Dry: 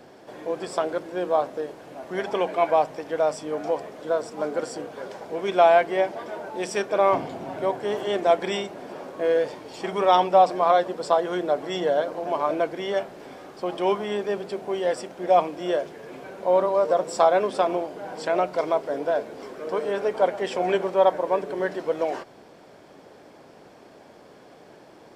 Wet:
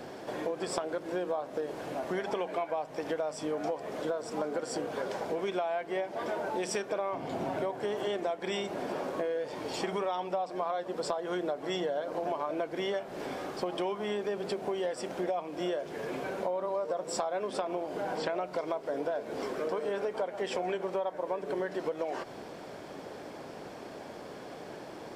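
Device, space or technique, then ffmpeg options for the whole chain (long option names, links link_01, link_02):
serial compression, peaks first: -filter_complex "[0:a]asettb=1/sr,asplit=3[link_01][link_02][link_03];[link_01]atrim=end=17.614[link_04];[link_02]atrim=start=17.61:end=18.41,asetpts=PTS-STARTPTS,afade=type=in:duration=0.004:curve=qsin,afade=type=out:start_time=0.796:duration=0.004:curve=qsin,acrossover=split=4800[link_05][link_06];[link_06]acompressor=threshold=-56dB:ratio=4:attack=1:release=60[link_07];[link_05][link_07]amix=inputs=2:normalize=0[link_08];[link_03]atrim=start=18.406[link_09];[link_04][link_08]acrossfade=duration=0.004:curve1=hsin:curve2=qsin[link_10];[link_10][link_09]acrossfade=duration=0.004:curve1=qsin:curve2=hsin,acompressor=threshold=-30dB:ratio=6,acompressor=threshold=-38dB:ratio=2,volume=5dB"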